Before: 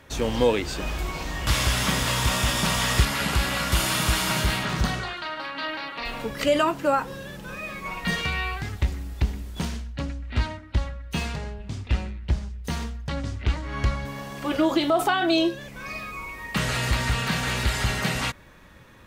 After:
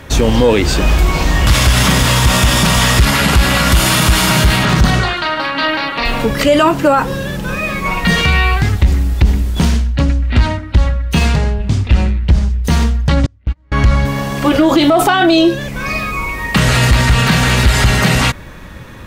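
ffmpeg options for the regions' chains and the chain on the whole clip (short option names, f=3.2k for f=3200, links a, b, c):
-filter_complex "[0:a]asettb=1/sr,asplit=3[a][b][c];[a]atrim=end=13.264[d];[b]atrim=start=13.26:end=13.72,asetpts=PTS-STARTPTS,afade=t=in:d=0.004:c=qsin,afade=t=out:st=0.456:d=0.004:c=qsin,agate=range=-39dB:threshold=-22dB:ratio=16:release=100:detection=peak,bass=f=250:g=4,treble=f=4k:g=-7,acompressor=threshold=-35dB:ratio=4:attack=3.2:release=140:knee=1:detection=peak[e];[c]atrim=start=13.716[f];[d][e]acrossfade=d=0.004:c1=hsin:c2=qsin[g];[g][f]acrossfade=d=0.004:c1=qsin:c2=hsin,lowshelf=f=240:g=5.5,acontrast=89,alimiter=level_in=9.5dB:limit=-1dB:release=50:level=0:latency=1,volume=-2dB"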